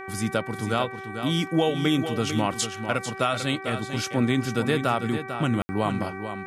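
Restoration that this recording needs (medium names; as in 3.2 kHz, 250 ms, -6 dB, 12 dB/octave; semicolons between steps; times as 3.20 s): de-hum 384.2 Hz, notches 6; room tone fill 5.62–5.69 s; inverse comb 447 ms -9 dB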